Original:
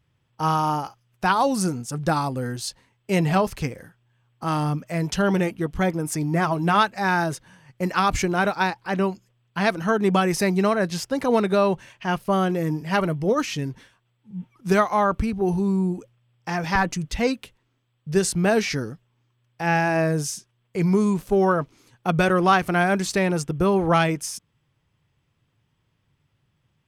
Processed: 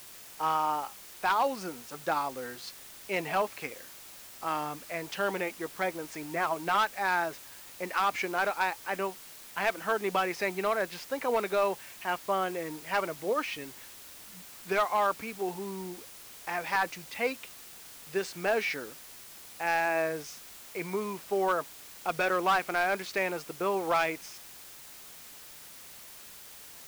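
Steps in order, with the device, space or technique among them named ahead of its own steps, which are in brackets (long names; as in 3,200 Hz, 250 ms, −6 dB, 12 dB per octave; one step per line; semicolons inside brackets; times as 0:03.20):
drive-through speaker (band-pass filter 460–3,500 Hz; parametric band 2,300 Hz +5 dB 0.33 octaves; hard clipping −14.5 dBFS, distortion −16 dB; white noise bed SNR 16 dB)
level −5 dB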